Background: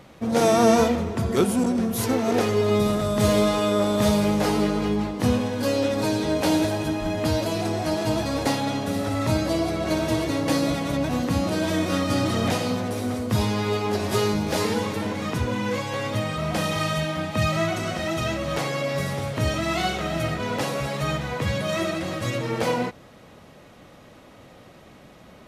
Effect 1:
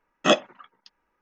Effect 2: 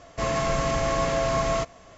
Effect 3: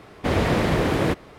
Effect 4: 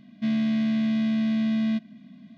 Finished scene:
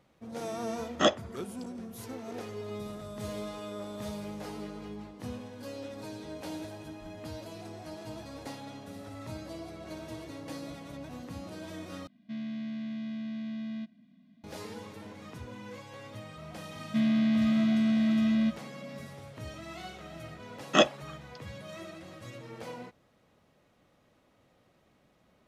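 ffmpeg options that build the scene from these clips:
-filter_complex "[1:a]asplit=2[s0][s1];[4:a]asplit=2[s2][s3];[0:a]volume=0.119[s4];[s0]bandreject=f=2600:w=7.5[s5];[s4]asplit=2[s6][s7];[s6]atrim=end=12.074[s8];[s2]atrim=end=2.37,asetpts=PTS-STARTPTS,volume=0.224[s9];[s7]atrim=start=14.436[s10];[s5]atrim=end=1.21,asetpts=PTS-STARTPTS,volume=0.562,afade=t=in:d=0.004:c=hsin,afade=t=out:st=1.206:d=0.004:c=hsin,adelay=750[s11];[s3]atrim=end=2.37,asetpts=PTS-STARTPTS,volume=0.841,afade=t=in:d=0.004:c=hsin,afade=t=out:st=2.366:d=0.004:c=hsin,adelay=16720[s12];[s1]atrim=end=1.21,asetpts=PTS-STARTPTS,volume=0.708,afade=t=in:d=0.004:c=hsin,afade=t=out:st=1.206:d=0.004:c=hsin,adelay=20490[s13];[s8][s9]acrossfade=d=0.004:c1=hsin:c2=hsin[s14];[s14][s10]acrossfade=d=0.004:c1=hsin:c2=hsin[s15];[s15][s11][s12][s13]amix=inputs=4:normalize=0"

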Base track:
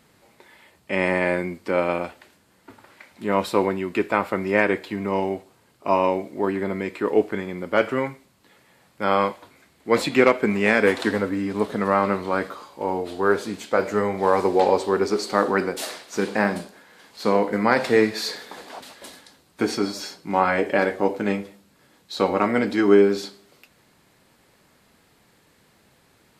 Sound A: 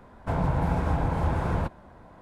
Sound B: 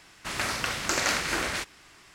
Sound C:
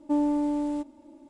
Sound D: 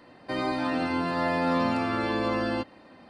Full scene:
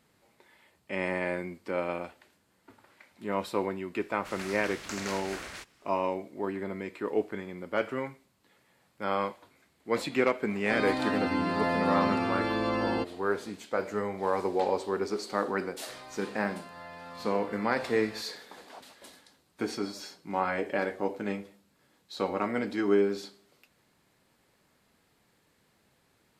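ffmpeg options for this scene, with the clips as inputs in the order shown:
-filter_complex "[4:a]asplit=2[s0][s1];[0:a]volume=0.335[s2];[s1]equalizer=f=300:w=1.5:g=-14[s3];[2:a]atrim=end=2.14,asetpts=PTS-STARTPTS,volume=0.251,afade=t=in:d=0.004:c=hsin,afade=t=out:st=2.136:d=0.004:c=hsin,adelay=4000[s4];[s0]atrim=end=3.09,asetpts=PTS-STARTPTS,volume=0.794,afade=t=in:d=0.004:c=hsin,afade=t=out:st=3.086:d=0.004:c=hsin,adelay=10410[s5];[s3]atrim=end=3.09,asetpts=PTS-STARTPTS,volume=0.15,afade=t=in:d=0.004:c=hsin,afade=t=out:st=3.086:d=0.004:c=hsin,adelay=15590[s6];[s2][s4][s5][s6]amix=inputs=4:normalize=0"

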